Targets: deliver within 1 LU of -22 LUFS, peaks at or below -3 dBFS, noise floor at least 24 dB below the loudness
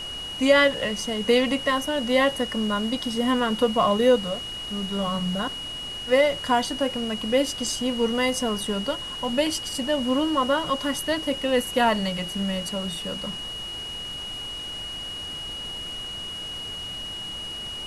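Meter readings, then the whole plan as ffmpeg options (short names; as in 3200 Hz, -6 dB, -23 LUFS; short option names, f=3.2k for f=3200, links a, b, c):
steady tone 2900 Hz; tone level -32 dBFS; noise floor -34 dBFS; noise floor target -49 dBFS; loudness -25.0 LUFS; peak -6.5 dBFS; loudness target -22.0 LUFS
-> -af "bandreject=f=2.9k:w=30"
-af "afftdn=nr=15:nf=-34"
-af "volume=3dB"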